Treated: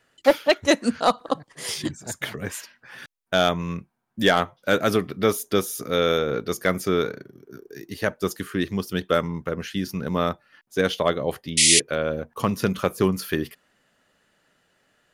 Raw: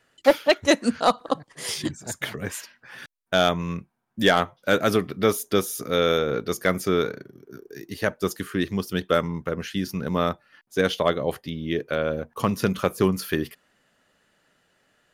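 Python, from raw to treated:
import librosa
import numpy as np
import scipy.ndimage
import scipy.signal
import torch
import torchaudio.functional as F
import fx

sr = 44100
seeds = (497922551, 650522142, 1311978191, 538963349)

y = fx.spec_paint(x, sr, seeds[0], shape='noise', start_s=11.57, length_s=0.23, low_hz=1900.0, high_hz=11000.0, level_db=-16.0)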